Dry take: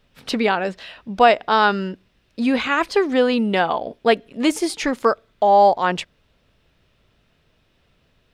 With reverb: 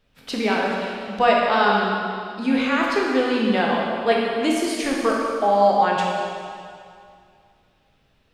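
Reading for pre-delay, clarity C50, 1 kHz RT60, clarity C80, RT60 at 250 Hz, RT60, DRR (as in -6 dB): 7 ms, -0.5 dB, 2.3 s, 1.0 dB, 2.2 s, 2.3 s, -3.0 dB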